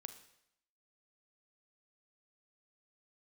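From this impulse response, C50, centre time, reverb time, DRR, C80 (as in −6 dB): 11.0 dB, 10 ms, 0.75 s, 9.0 dB, 13.5 dB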